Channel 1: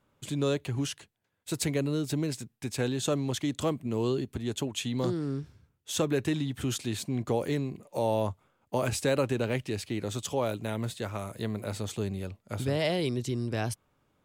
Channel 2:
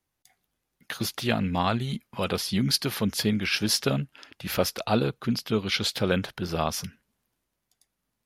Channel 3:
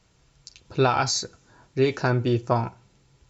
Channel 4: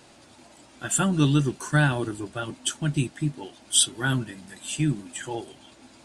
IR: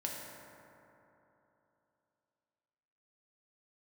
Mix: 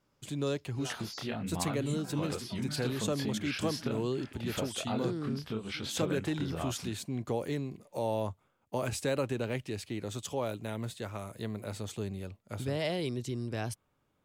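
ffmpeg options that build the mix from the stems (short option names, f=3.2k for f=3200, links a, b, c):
-filter_complex "[0:a]volume=-4.5dB[a];[1:a]highshelf=f=3.4k:g=-9,volume=2dB[b];[2:a]equalizer=f=5.1k:t=o:w=0.37:g=14,asplit=2[c][d];[d]adelay=3,afreqshift=-0.69[e];[c][e]amix=inputs=2:normalize=1,volume=-17.5dB[f];[3:a]adelay=950,volume=-15dB[g];[b][f][g]amix=inputs=3:normalize=0,flanger=delay=22.5:depth=7.4:speed=1.2,acompressor=threshold=-38dB:ratio=2.5,volume=0dB[h];[a][h]amix=inputs=2:normalize=0"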